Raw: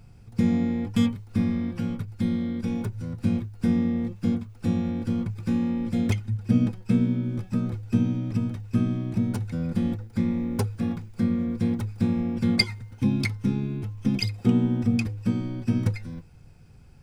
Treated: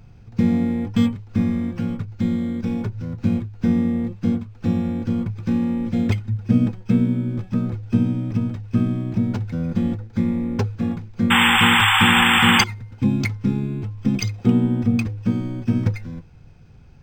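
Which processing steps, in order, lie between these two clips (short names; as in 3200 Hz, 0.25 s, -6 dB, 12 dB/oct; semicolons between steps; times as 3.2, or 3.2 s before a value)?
painted sound noise, 11.3–12.64, 750–3600 Hz -19 dBFS; decimation joined by straight lines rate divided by 4×; gain +4 dB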